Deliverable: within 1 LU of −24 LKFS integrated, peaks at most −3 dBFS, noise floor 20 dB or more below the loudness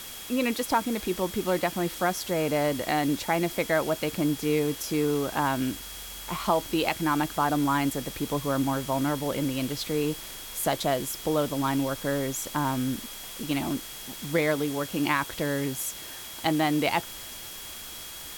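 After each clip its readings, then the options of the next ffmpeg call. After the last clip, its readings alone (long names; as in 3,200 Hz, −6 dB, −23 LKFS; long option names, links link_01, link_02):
interfering tone 3,300 Hz; level of the tone −46 dBFS; background noise floor −41 dBFS; target noise floor −48 dBFS; integrated loudness −28.0 LKFS; sample peak −11.0 dBFS; target loudness −24.0 LKFS
→ -af "bandreject=frequency=3300:width=30"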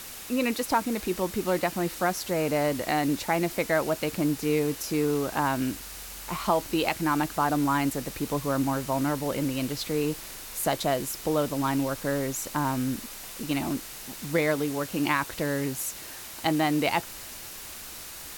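interfering tone none found; background noise floor −41 dBFS; target noise floor −48 dBFS
→ -af "afftdn=noise_reduction=7:noise_floor=-41"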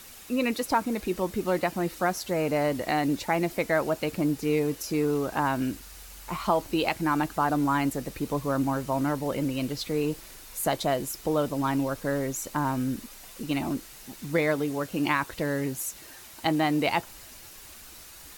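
background noise floor −47 dBFS; target noise floor −48 dBFS
→ -af "afftdn=noise_reduction=6:noise_floor=-47"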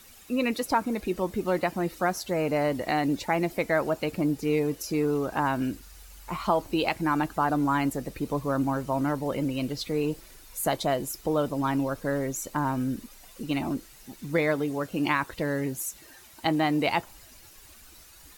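background noise floor −52 dBFS; integrated loudness −28.0 LKFS; sample peak −11.0 dBFS; target loudness −24.0 LKFS
→ -af "volume=4dB"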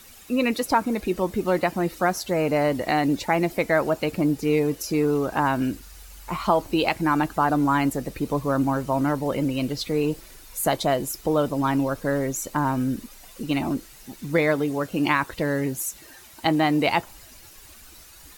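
integrated loudness −24.0 LKFS; sample peak −7.0 dBFS; background noise floor −48 dBFS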